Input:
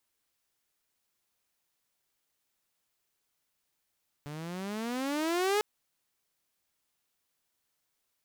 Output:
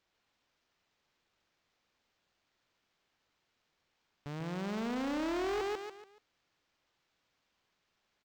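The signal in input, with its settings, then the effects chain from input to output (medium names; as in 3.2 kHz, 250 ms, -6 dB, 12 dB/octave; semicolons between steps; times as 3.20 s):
gliding synth tone saw, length 1.35 s, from 143 Hz, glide +19 st, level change +14.5 dB, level -22 dB
on a send: feedback delay 143 ms, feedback 34%, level -6 dB; on the sum: overload inside the chain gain 32 dB; decimation joined by straight lines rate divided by 4×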